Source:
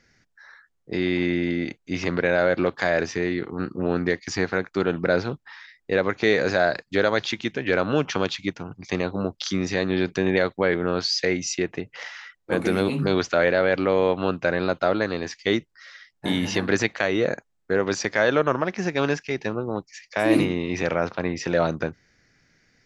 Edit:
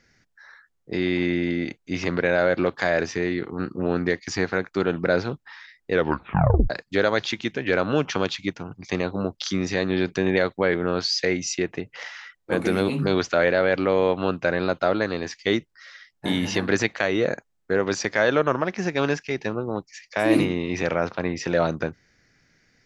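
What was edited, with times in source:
5.92 s: tape stop 0.78 s

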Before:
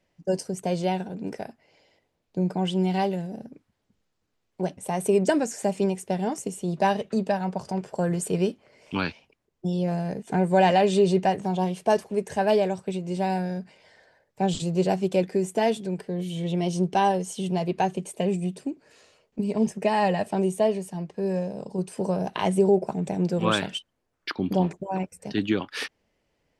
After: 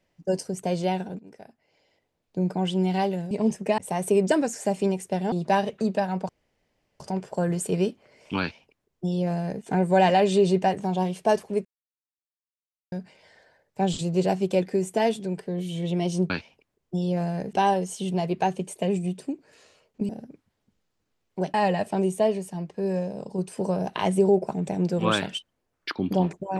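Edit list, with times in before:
1.19–2.47 s: fade in, from -19 dB
3.31–4.76 s: swap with 19.47–19.94 s
6.30–6.64 s: delete
7.61 s: insert room tone 0.71 s
9.01–10.24 s: copy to 16.91 s
12.26–13.53 s: mute

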